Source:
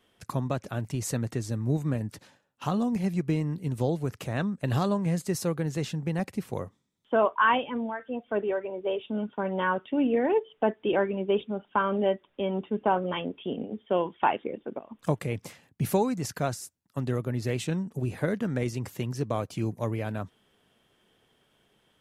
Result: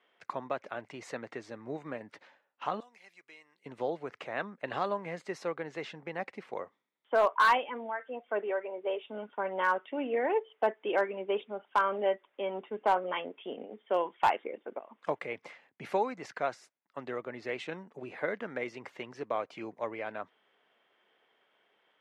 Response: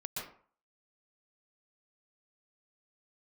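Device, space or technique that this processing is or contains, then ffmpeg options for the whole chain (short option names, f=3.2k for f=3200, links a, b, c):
megaphone: -filter_complex "[0:a]asettb=1/sr,asplit=3[a][b][c];[a]atrim=end=2.804[d];[b]atrim=start=2.8:end=3.66,asetpts=PTS-STARTPTS,afade=t=in:d=0.004:c=qsin,afade=t=out:st=0.856:d=0.004:c=qsin,aderivative[e];[c]atrim=start=3.656[f];[d][e]acrossfade=d=0.004:c1=hsin:c2=qsin[g];[g][f]acrossfade=d=0.004:c1=qsin:c2=hsin,highpass=530,lowpass=2.6k,equalizer=f=2.1k:t=o:w=0.21:g=5.5,asoftclip=type=hard:threshold=-17.5dB"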